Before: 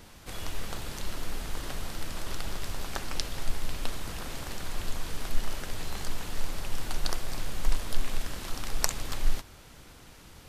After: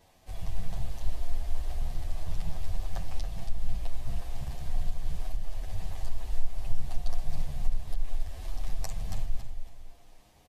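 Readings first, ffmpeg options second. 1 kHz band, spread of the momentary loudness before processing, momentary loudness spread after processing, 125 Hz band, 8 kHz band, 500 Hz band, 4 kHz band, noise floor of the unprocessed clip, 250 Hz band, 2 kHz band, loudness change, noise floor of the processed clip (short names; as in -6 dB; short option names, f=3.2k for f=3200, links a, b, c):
-7.5 dB, 5 LU, 3 LU, +2.5 dB, -12.5 dB, -7.0 dB, -12.5 dB, -51 dBFS, -6.0 dB, -13.0 dB, -2.5 dB, -58 dBFS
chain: -filter_complex "[0:a]afwtdn=0.0447,equalizer=f=700:t=o:w=0.47:g=11,bandreject=f=1.4k:w=5.4,alimiter=limit=-21.5dB:level=0:latency=1:release=228,asplit=2[a][b];[b]aecho=0:1:277|554|831:0.355|0.0993|0.0278[c];[a][c]amix=inputs=2:normalize=0,asplit=2[d][e];[e]adelay=8.8,afreqshift=0.35[f];[d][f]amix=inputs=2:normalize=1,volume=8dB"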